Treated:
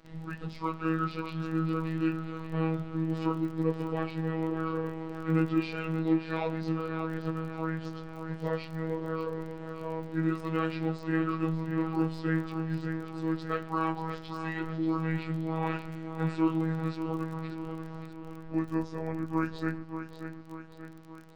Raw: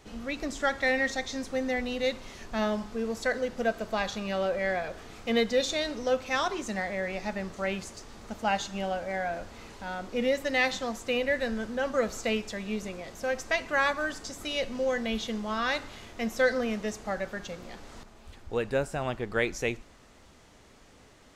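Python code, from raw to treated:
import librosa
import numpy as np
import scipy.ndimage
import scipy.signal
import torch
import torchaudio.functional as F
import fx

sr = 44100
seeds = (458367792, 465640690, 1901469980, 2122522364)

p1 = fx.pitch_bins(x, sr, semitones=-7.0)
p2 = fx.high_shelf(p1, sr, hz=3000.0, db=-9.0)
p3 = fx.robotise(p2, sr, hz=161.0)
p4 = p3 + fx.echo_feedback(p3, sr, ms=584, feedback_pct=52, wet_db=-10, dry=0)
y = fx.dmg_crackle(p4, sr, seeds[0], per_s=27.0, level_db=-41.0)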